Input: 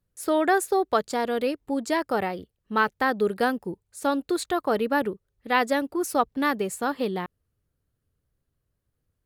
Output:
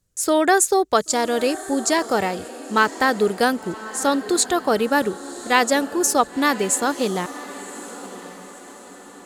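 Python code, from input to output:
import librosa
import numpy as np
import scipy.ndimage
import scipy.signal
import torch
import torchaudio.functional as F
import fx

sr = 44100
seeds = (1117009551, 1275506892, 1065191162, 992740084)

p1 = fx.peak_eq(x, sr, hz=7000.0, db=14.0, octaves=1.1)
p2 = p1 + fx.echo_diffused(p1, sr, ms=1058, feedback_pct=47, wet_db=-15.0, dry=0)
y = p2 * 10.0 ** (4.5 / 20.0)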